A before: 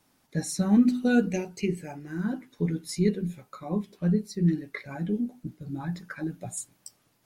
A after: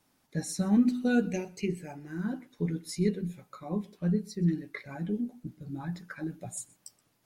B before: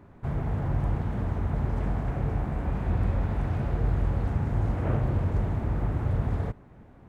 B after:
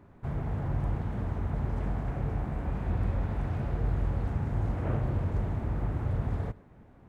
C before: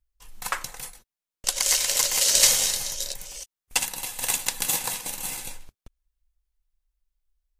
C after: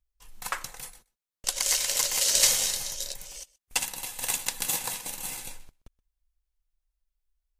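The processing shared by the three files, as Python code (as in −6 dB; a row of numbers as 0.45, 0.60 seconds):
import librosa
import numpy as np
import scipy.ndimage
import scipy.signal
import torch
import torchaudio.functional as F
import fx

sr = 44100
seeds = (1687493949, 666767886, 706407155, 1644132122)

y = x + 10.0 ** (-23.5 / 20.0) * np.pad(x, (int(125 * sr / 1000.0), 0))[:len(x)]
y = y * librosa.db_to_amplitude(-3.5)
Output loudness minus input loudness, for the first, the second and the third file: −3.5, −3.5, −3.5 LU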